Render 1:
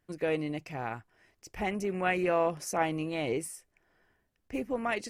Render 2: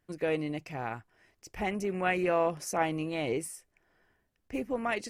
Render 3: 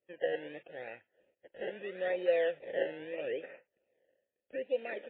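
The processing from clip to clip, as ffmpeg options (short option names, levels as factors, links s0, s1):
-af anull
-filter_complex "[0:a]acrusher=samples=25:mix=1:aa=0.000001:lfo=1:lforange=25:lforate=0.78,asplit=3[s0][s1][s2];[s0]bandpass=f=530:t=q:w=8,volume=1[s3];[s1]bandpass=f=1840:t=q:w=8,volume=0.501[s4];[s2]bandpass=f=2480:t=q:w=8,volume=0.355[s5];[s3][s4][s5]amix=inputs=3:normalize=0,volume=1.78" -ar 8000 -c:a libmp3lame -b:a 16k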